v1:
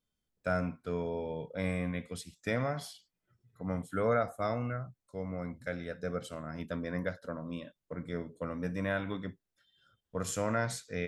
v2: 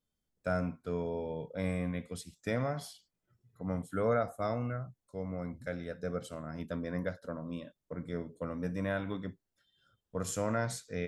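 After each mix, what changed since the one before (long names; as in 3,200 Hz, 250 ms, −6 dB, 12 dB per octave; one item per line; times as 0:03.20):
second voice +4.0 dB
master: add parametric band 2,300 Hz −4 dB 2 octaves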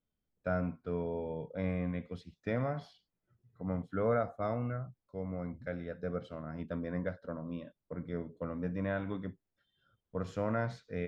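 master: add high-frequency loss of the air 270 metres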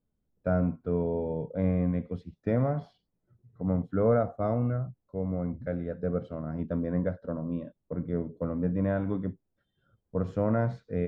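master: add tilt shelving filter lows +8.5 dB, about 1,400 Hz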